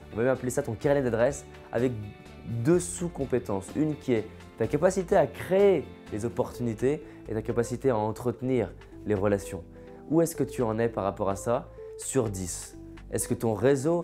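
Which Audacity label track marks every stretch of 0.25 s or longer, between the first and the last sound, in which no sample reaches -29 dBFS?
1.390000	1.730000	silence
1.990000	2.490000	silence
4.210000	4.600000	silence
5.810000	6.130000	silence
6.960000	7.290000	silence
8.660000	9.070000	silence
9.570000	10.110000	silence
11.590000	12.010000	silence
12.650000	13.130000	silence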